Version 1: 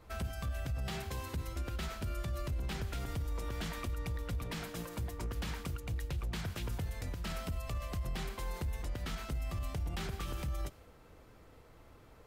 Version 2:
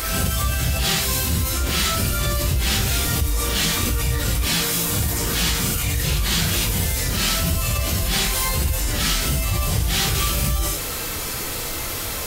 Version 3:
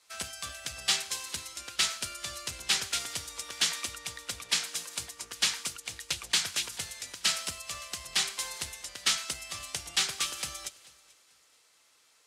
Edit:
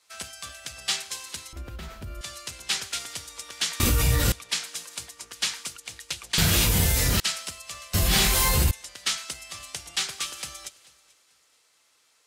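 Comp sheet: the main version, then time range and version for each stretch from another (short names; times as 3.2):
3
1.53–2.21 from 1
3.8–4.32 from 2
6.38–7.2 from 2
7.94–8.71 from 2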